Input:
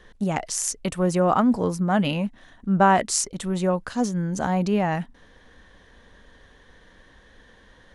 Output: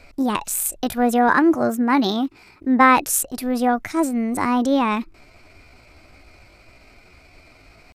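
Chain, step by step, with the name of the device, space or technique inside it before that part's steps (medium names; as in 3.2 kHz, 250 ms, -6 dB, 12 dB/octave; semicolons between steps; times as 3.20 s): 1.29–2.82 s: high-pass 49 Hz; chipmunk voice (pitch shift +5 st); trim +3.5 dB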